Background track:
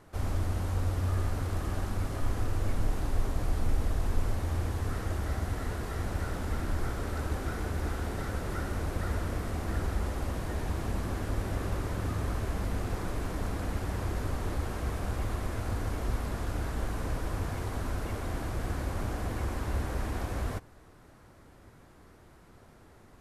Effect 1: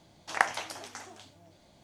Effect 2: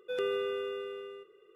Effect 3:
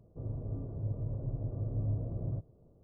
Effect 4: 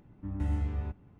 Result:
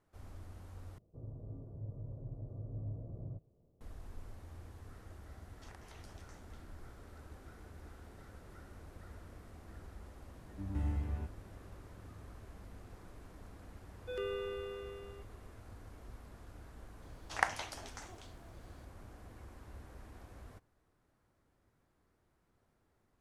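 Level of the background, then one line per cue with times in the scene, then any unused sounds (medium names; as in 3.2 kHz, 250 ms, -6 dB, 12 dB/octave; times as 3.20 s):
background track -20 dB
0.98 s: replace with 3 -9 dB
5.34 s: add 1 -17.5 dB + compression, threshold -37 dBFS
10.35 s: add 4 -5 dB
13.99 s: add 2 -7 dB
17.02 s: add 1 -6 dB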